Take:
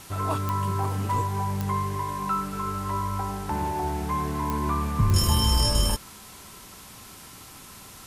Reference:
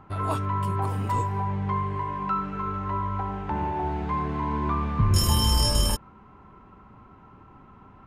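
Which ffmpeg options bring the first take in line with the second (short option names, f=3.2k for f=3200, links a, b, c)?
-af "adeclick=t=4,afwtdn=0.0056"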